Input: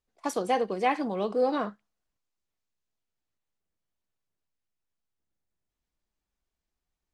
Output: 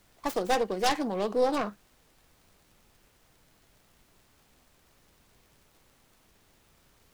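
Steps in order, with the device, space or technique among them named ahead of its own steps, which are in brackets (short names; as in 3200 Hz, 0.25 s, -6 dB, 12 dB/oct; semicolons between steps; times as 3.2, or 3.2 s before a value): record under a worn stylus (tracing distortion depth 0.42 ms; crackle; pink noise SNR 29 dB)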